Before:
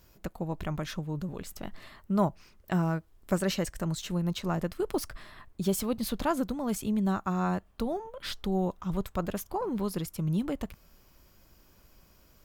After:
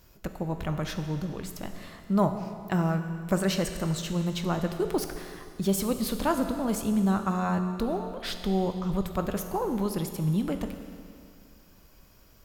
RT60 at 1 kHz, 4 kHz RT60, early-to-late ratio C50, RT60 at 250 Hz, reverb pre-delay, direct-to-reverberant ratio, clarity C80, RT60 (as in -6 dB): 2.3 s, 2.2 s, 7.5 dB, 2.3 s, 16 ms, 6.5 dB, 8.5 dB, 2.3 s